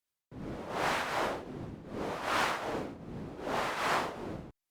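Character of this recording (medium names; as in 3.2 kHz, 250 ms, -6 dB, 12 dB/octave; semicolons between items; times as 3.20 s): tremolo triangle 2.6 Hz, depth 70%; Opus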